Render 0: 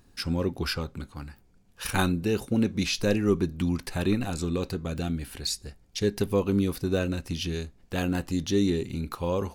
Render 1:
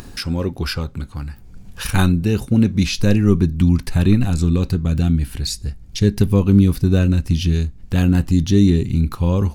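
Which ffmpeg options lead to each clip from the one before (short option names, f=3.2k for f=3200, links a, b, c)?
-af "asubboost=boost=4.5:cutoff=220,acompressor=mode=upward:threshold=-28dB:ratio=2.5,volume=5dB"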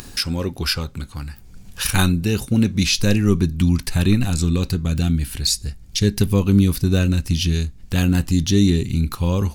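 -af "highshelf=f=2.1k:g=9.5,volume=-2.5dB"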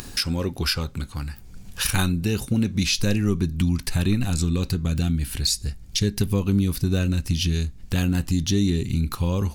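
-af "acompressor=threshold=-21dB:ratio=2"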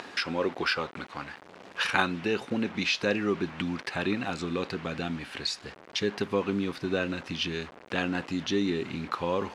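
-af "acrusher=bits=6:mix=0:aa=0.000001,highpass=440,lowpass=2.3k,volume=4.5dB"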